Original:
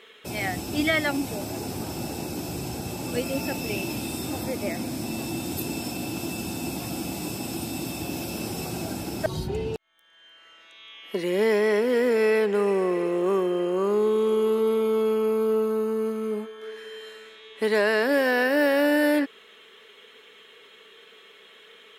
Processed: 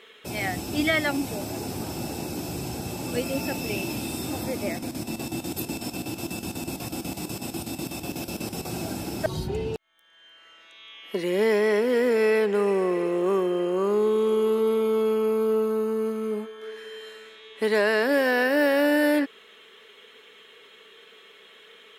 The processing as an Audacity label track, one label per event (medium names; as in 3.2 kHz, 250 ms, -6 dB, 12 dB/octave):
4.700000	8.660000	square tremolo 8.1 Hz, depth 65%, duty 70%